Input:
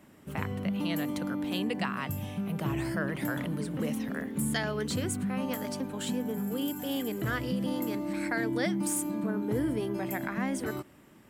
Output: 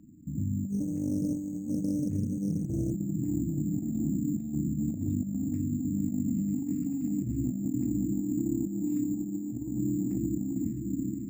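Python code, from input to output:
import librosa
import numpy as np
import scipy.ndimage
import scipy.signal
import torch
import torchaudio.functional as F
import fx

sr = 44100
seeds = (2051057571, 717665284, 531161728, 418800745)

y = fx.brickwall_bandstop(x, sr, low_hz=340.0, high_hz=11000.0)
y = fx.air_absorb(y, sr, metres=190.0)
y = fx.echo_diffused(y, sr, ms=533, feedback_pct=61, wet_db=-6.0)
y = fx.over_compress(y, sr, threshold_db=-33.0, ratio=-0.5)
y = np.repeat(y[::6], 6)[:len(y)]
y = fx.doppler_dist(y, sr, depth_ms=0.29, at=(0.69, 2.92))
y = y * librosa.db_to_amplitude(3.5)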